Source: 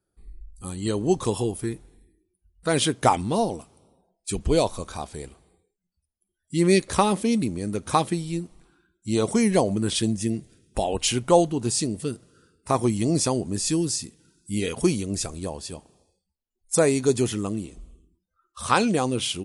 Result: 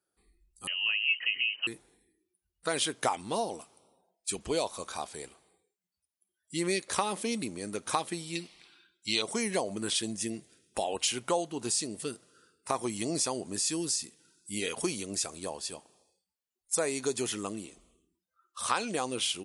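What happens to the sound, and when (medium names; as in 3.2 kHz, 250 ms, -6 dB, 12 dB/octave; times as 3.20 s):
0.67–1.67 s: frequency inversion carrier 3 kHz
8.35–9.22 s: high-order bell 3.2 kHz +14 dB
whole clip: high-pass 740 Hz 6 dB/octave; compression 2.5:1, threshold -28 dBFS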